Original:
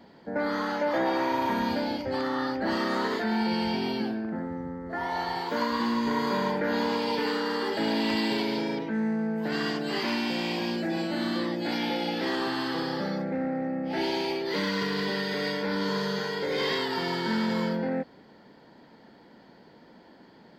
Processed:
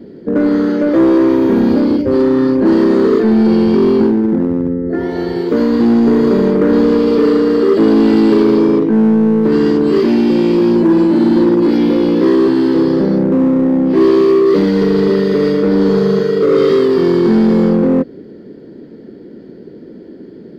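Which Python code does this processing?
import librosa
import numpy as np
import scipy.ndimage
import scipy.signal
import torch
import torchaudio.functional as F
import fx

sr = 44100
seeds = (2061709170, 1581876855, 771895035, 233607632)

p1 = fx.low_shelf_res(x, sr, hz=590.0, db=14.0, q=3.0)
p2 = 10.0 ** (-12.0 / 20.0) * (np.abs((p1 / 10.0 ** (-12.0 / 20.0) + 3.0) % 4.0 - 2.0) - 1.0)
p3 = p1 + (p2 * librosa.db_to_amplitude(-9.0))
y = fx.peak_eq(p3, sr, hz=1400.0, db=4.5, octaves=0.82)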